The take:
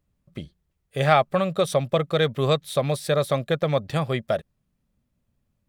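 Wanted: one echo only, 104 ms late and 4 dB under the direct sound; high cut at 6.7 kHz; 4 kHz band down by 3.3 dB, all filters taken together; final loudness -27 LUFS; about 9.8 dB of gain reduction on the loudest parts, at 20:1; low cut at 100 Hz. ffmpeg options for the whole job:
-af "highpass=100,lowpass=6700,equalizer=f=4000:t=o:g=-3.5,acompressor=threshold=0.0891:ratio=20,aecho=1:1:104:0.631"

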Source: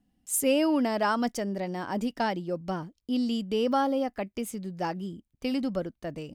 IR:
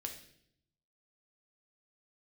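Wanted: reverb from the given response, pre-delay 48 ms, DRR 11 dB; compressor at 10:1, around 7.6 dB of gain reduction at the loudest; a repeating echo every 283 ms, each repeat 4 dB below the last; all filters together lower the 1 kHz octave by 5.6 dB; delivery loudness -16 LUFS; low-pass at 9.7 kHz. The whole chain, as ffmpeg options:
-filter_complex "[0:a]lowpass=9700,equalizer=f=1000:t=o:g=-7.5,acompressor=threshold=0.0355:ratio=10,aecho=1:1:283|566|849|1132|1415|1698|1981|2264|2547:0.631|0.398|0.25|0.158|0.0994|0.0626|0.0394|0.0249|0.0157,asplit=2[s0][s1];[1:a]atrim=start_sample=2205,adelay=48[s2];[s1][s2]afir=irnorm=-1:irlink=0,volume=0.355[s3];[s0][s3]amix=inputs=2:normalize=0,volume=6.68"

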